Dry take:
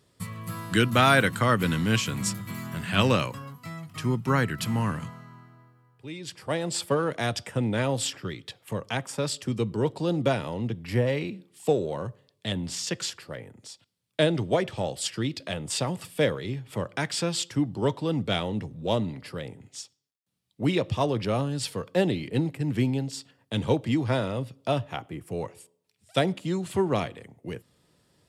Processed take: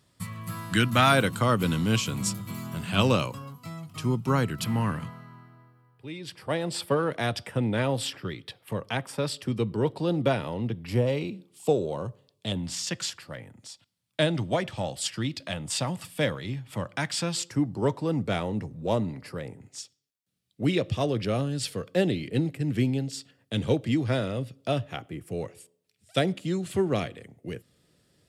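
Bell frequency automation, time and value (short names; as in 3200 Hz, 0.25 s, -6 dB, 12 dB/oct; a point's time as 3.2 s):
bell -9 dB 0.5 oct
430 Hz
from 1.12 s 1800 Hz
from 4.64 s 6900 Hz
from 10.87 s 1800 Hz
from 12.57 s 420 Hz
from 17.37 s 3300 Hz
from 19.78 s 940 Hz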